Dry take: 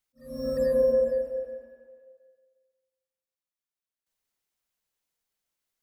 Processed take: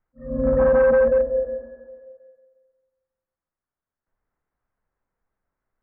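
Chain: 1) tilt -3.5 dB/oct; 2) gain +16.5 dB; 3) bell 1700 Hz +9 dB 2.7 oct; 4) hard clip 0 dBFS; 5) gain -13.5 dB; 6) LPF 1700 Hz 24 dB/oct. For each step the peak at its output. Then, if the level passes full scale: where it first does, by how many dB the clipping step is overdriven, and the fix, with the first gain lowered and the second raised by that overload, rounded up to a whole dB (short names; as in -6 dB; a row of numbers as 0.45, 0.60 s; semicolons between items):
-9.5, +7.0, +9.5, 0.0, -13.5, -12.0 dBFS; step 2, 9.5 dB; step 2 +6.5 dB, step 5 -3.5 dB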